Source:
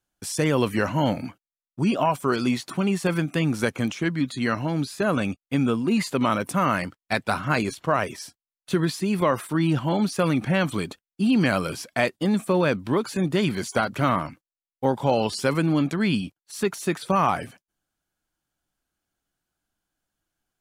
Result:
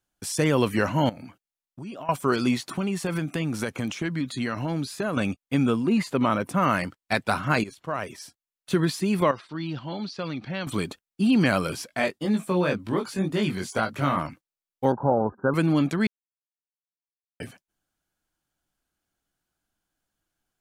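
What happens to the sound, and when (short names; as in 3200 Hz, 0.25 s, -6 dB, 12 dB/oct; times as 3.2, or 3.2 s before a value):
1.09–2.09 compressor 3:1, threshold -40 dBFS
2.71–5.17 compressor 5:1, threshold -23 dBFS
5.87–6.63 high shelf 2900 Hz -7.5 dB
7.64–8.76 fade in, from -13.5 dB
9.31–10.67 ladder low-pass 5100 Hz, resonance 55%
11.87–14.17 chorus 2 Hz, delay 18 ms, depth 4 ms
14.92–15.54 Chebyshev low-pass 1600 Hz, order 8
16.07–17.4 mute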